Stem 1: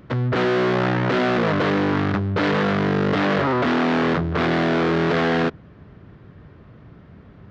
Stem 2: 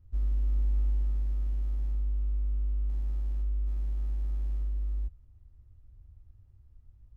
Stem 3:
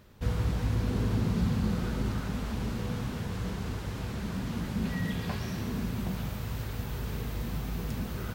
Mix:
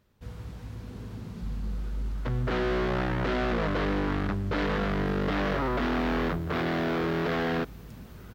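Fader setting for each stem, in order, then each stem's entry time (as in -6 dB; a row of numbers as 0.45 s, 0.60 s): -8.5 dB, -6.0 dB, -11.5 dB; 2.15 s, 1.30 s, 0.00 s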